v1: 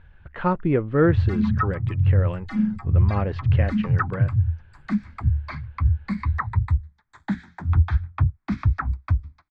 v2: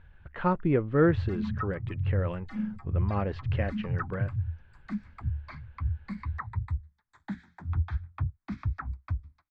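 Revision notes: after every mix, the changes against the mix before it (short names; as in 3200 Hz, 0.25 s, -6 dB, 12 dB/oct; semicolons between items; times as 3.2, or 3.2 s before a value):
speech -4.0 dB; background -10.5 dB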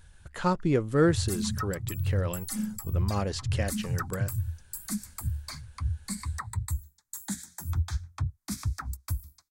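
master: remove LPF 2600 Hz 24 dB/oct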